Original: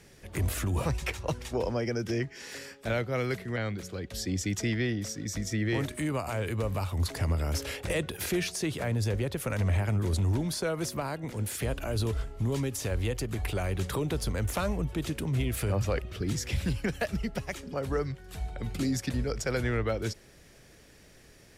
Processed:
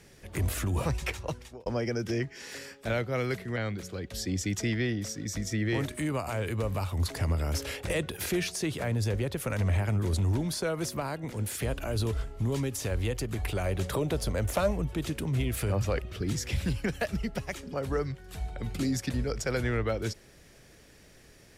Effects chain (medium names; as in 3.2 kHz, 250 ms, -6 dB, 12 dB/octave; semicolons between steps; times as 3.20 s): 1.14–1.66 s: fade out; 13.65–14.71 s: peaking EQ 600 Hz +7.5 dB 0.51 oct